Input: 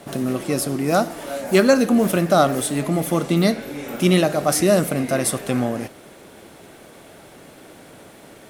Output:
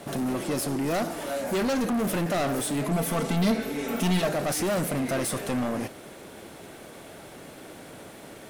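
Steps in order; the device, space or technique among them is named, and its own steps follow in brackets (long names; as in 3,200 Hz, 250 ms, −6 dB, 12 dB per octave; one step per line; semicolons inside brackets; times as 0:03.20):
saturation between pre-emphasis and de-emphasis (high-shelf EQ 7,300 Hz +6 dB; soft clipping −23.5 dBFS, distortion −5 dB; high-shelf EQ 7,300 Hz −6 dB)
0:02.91–0:04.29: comb filter 4.5 ms, depth 73%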